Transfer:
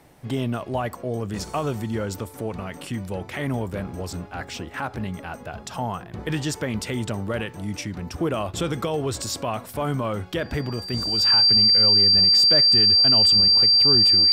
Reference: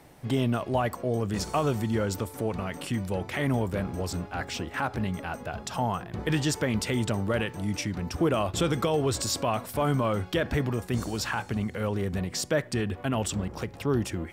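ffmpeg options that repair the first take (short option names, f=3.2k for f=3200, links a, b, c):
-af "bandreject=f=4.7k:w=30"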